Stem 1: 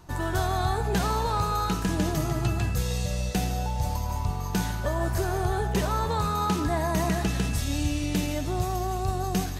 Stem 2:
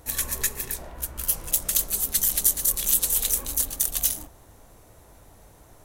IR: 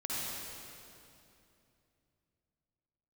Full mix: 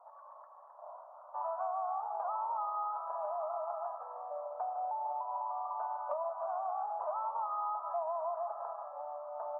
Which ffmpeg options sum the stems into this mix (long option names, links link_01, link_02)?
-filter_complex "[0:a]adelay=1250,volume=3dB[link_01];[1:a]acompressor=threshold=-38dB:ratio=2.5,volume=-0.5dB,asplit=2[link_02][link_03];[link_03]volume=-7.5dB[link_04];[2:a]atrim=start_sample=2205[link_05];[link_04][link_05]afir=irnorm=-1:irlink=0[link_06];[link_01][link_02][link_06]amix=inputs=3:normalize=0,asuperpass=centerf=860:order=12:qfactor=1.3,acompressor=threshold=-34dB:ratio=5"